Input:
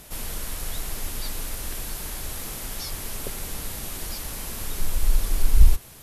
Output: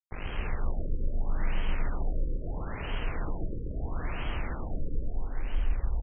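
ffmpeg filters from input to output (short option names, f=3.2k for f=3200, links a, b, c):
-filter_complex "[0:a]asplit=2[a][b];[b]aecho=0:1:160.3|256.6:0.501|1[c];[a][c]amix=inputs=2:normalize=0,asoftclip=type=tanh:threshold=-9dB,asetrate=35002,aresample=44100,atempo=1.25992,highpass=f=50:p=1,lowshelf=f=89:g=9.5,acrusher=bits=4:mix=0:aa=0.000001,alimiter=limit=-17.5dB:level=0:latency=1:release=157,asplit=2[d][e];[e]aecho=0:1:135|270|405|540|675|810|945:0.708|0.375|0.199|0.105|0.0559|0.0296|0.0157[f];[d][f]amix=inputs=2:normalize=0,afftfilt=real='re*lt(b*sr/1024,550*pow(3300/550,0.5+0.5*sin(2*PI*0.76*pts/sr)))':imag='im*lt(b*sr/1024,550*pow(3300/550,0.5+0.5*sin(2*PI*0.76*pts/sr)))':win_size=1024:overlap=0.75,volume=-4.5dB"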